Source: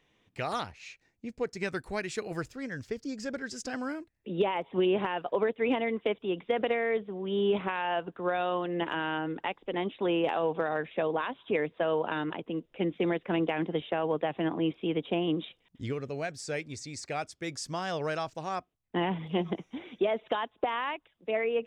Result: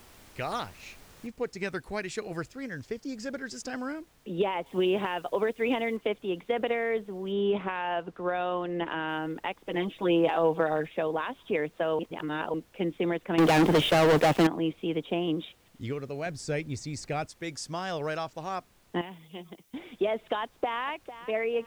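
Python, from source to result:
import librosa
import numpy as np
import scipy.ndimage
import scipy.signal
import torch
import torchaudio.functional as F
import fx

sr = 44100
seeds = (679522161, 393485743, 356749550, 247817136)

y = fx.noise_floor_step(x, sr, seeds[0], at_s=1.27, before_db=-53, after_db=-63, tilt_db=3.0)
y = fx.high_shelf(y, sr, hz=4200.0, db=8.0, at=(4.66, 5.97))
y = fx.high_shelf(y, sr, hz=6700.0, db=-12.0, at=(7.32, 9.09))
y = fx.comb(y, sr, ms=6.2, depth=0.76, at=(9.66, 10.88))
y = fx.leveller(y, sr, passes=5, at=(13.38, 14.47))
y = fx.low_shelf(y, sr, hz=310.0, db=10.0, at=(16.26, 17.27))
y = fx.pre_emphasis(y, sr, coefficient=0.8, at=(19.01, 19.74))
y = fx.echo_throw(y, sr, start_s=20.4, length_s=0.45, ms=450, feedback_pct=30, wet_db=-13.5)
y = fx.edit(y, sr, fx.reverse_span(start_s=11.99, length_s=0.55), tone=tone)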